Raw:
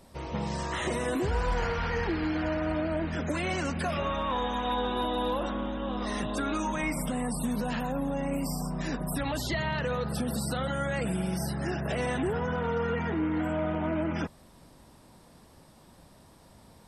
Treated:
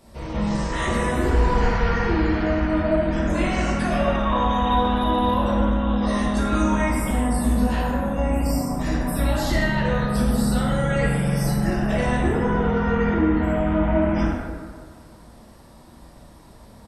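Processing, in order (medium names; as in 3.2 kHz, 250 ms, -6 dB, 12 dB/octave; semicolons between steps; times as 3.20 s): octave divider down 2 oct, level -2 dB; 10.67–11.53 s: comb 6.8 ms, depth 61%; speakerphone echo 80 ms, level -14 dB; reverberation RT60 1.7 s, pre-delay 3 ms, DRR -5.5 dB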